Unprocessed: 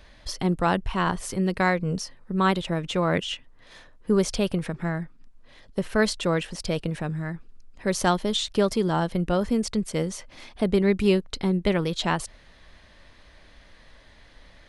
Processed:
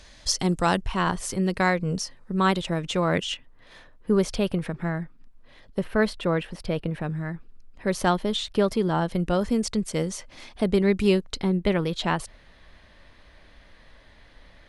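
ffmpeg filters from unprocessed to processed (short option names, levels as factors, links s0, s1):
-af "asetnsamples=n=441:p=0,asendcmd='0.81 equalizer g 3.5;3.34 equalizer g -5.5;5.84 equalizer g -14.5;7.01 equalizer g -6.5;9.08 equalizer g 2;11.42 equalizer g -5',equalizer=f=6900:t=o:w=1.3:g=13.5"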